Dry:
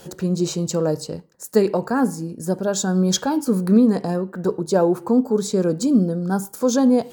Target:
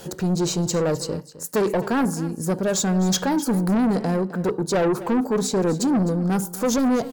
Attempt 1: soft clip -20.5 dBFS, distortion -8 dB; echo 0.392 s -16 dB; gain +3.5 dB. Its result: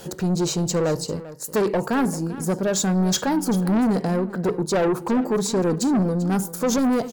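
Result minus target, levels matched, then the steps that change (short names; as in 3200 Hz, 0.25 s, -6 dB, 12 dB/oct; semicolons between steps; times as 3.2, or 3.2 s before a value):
echo 0.133 s late
change: echo 0.259 s -16 dB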